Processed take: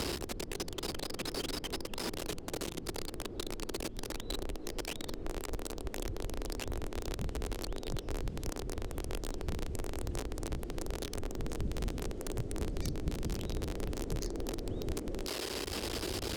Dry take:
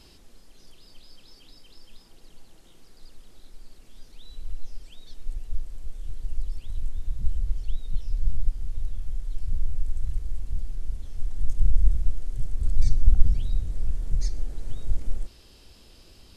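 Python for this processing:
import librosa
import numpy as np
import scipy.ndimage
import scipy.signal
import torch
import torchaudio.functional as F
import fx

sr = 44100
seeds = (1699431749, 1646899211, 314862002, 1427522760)

y = x + 0.5 * 10.0 ** (-11.0 / 20.0) * np.diff(np.sign(x), prepend=np.sign(x[:1]))
y = fx.bandpass_q(y, sr, hz=370.0, q=2.0)
y = fx.band_squash(y, sr, depth_pct=100)
y = y * librosa.db_to_amplitude(14.0)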